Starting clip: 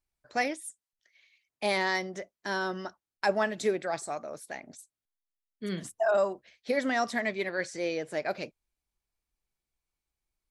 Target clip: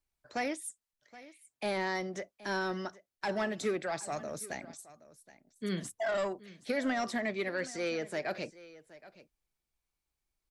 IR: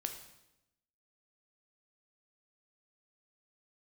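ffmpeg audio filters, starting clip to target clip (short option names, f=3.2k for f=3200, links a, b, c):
-filter_complex "[0:a]asettb=1/sr,asplit=3[a][b][c];[a]atrim=end=4.124[d];[b]atrim=start=4.12:end=4.65,asetpts=PTS-STARTPTS,afade=t=in:d=0.004:c=qsin,afade=t=out:st=0.526:d=0.004:c=qsin,bass=f=250:g=9,treble=f=4k:g=8[e];[c]atrim=start=4.646[f];[d][e]acrossfade=d=0.004:c1=hsin:c2=qsin[g];[g][f]acrossfade=d=0.004:c1=qsin:c2=hsin,acrossover=split=300|1300[h][i][j];[i]asoftclip=type=tanh:threshold=-32.5dB[k];[j]alimiter=level_in=6dB:limit=-24dB:level=0:latency=1:release=110,volume=-6dB[l];[h][k][l]amix=inputs=3:normalize=0,aecho=1:1:772:0.119"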